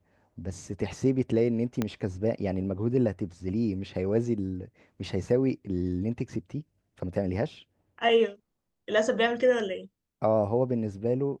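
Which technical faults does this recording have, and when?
0:01.82: click −14 dBFS

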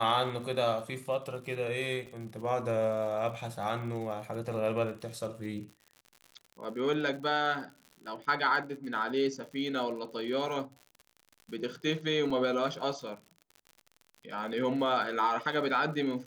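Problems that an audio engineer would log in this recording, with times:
surface crackle 77 per second −41 dBFS
0:02.06–0:02.07: drop-out 7.7 ms
0:12.30: drop-out 4.6 ms

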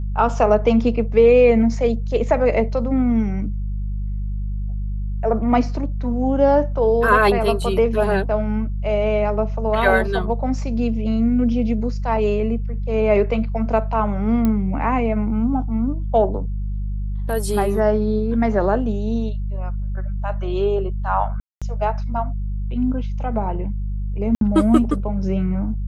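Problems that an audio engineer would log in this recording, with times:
mains hum 50 Hz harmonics 4 −24 dBFS
0:14.45: click −9 dBFS
0:21.40–0:21.62: drop-out 216 ms
0:24.35–0:24.41: drop-out 62 ms

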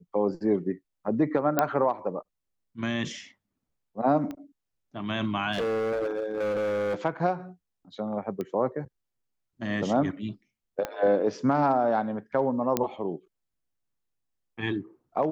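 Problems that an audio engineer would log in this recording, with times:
0:01.59: click −8 dBFS
0:04.31: click −24 dBFS
0:05.52–0:06.95: clipping −25 dBFS
0:08.41: click −21 dBFS
0:10.85: click −16 dBFS
0:12.77: click −9 dBFS

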